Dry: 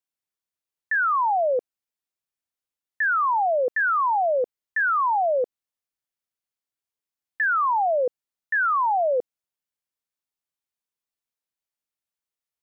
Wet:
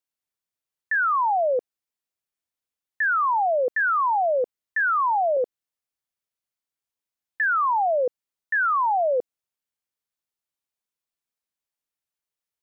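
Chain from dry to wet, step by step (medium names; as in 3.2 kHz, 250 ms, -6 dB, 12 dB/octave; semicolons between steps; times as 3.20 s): 4.81–5.37 s: high-pass 190 Hz 24 dB/octave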